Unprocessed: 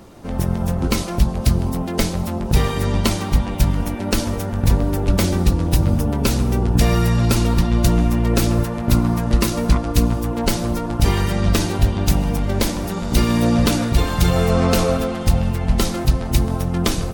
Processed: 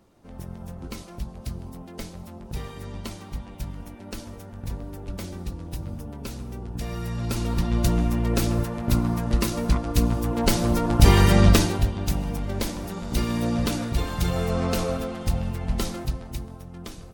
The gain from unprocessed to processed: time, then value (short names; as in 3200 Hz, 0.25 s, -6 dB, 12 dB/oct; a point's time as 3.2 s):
6.8 s -17 dB
7.73 s -6 dB
9.83 s -6 dB
11.4 s +4 dB
11.93 s -8.5 dB
15.91 s -8.5 dB
16.56 s -19.5 dB